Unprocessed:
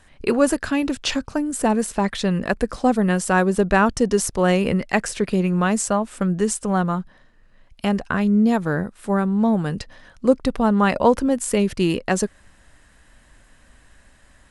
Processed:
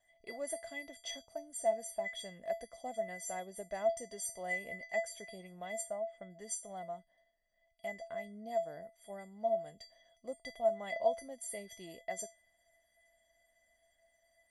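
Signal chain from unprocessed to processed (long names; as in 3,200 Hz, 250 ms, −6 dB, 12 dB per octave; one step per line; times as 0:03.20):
0:05.81–0:06.30: low-pass filter 2,400 Hz 12 dB per octave
tuned comb filter 660 Hz, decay 0.25 s, harmonics odd, mix 100%
level +5 dB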